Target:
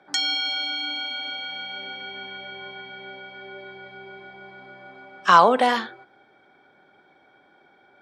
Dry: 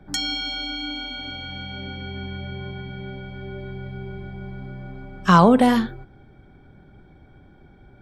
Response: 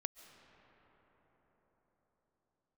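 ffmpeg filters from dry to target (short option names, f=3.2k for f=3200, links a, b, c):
-af "highpass=600,lowpass=6.4k,volume=3dB"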